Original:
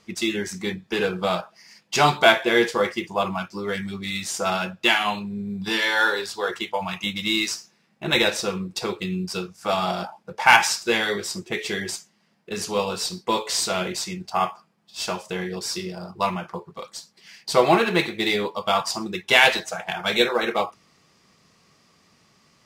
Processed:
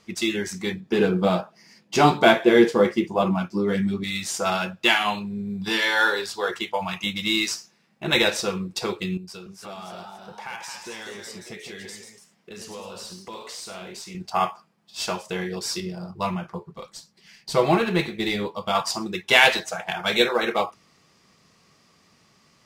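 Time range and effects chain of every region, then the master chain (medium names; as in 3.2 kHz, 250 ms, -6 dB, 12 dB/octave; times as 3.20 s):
0.80–4.04 s: peaking EQ 250 Hz +12.5 dB 2.5 oct + flange 1.2 Hz, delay 5.7 ms, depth 5.5 ms, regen -51%
9.17–14.15 s: compression 3:1, threshold -40 dBFS + ever faster or slower copies 293 ms, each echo +1 st, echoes 2, each echo -6 dB
15.80–18.75 s: bass shelf 200 Hz +11 dB + flange 1.3 Hz, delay 4.5 ms, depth 2.2 ms, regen -71%
whole clip: none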